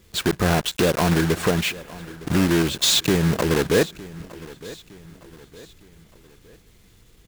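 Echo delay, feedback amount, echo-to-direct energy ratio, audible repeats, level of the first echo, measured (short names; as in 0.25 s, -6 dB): 0.911 s, 44%, -18.0 dB, 3, -19.0 dB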